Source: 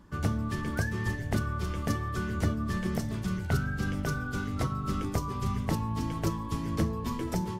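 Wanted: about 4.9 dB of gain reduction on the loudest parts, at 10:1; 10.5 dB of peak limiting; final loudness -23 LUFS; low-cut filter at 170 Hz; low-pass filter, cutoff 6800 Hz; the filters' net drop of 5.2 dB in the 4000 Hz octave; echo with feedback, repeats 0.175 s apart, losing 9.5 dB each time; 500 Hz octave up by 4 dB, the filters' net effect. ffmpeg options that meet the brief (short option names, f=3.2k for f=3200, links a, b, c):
-af "highpass=170,lowpass=6.8k,equalizer=f=500:t=o:g=5.5,equalizer=f=4k:t=o:g=-6.5,acompressor=threshold=-30dB:ratio=10,alimiter=level_in=4dB:limit=-24dB:level=0:latency=1,volume=-4dB,aecho=1:1:175|350|525|700:0.335|0.111|0.0365|0.012,volume=14dB"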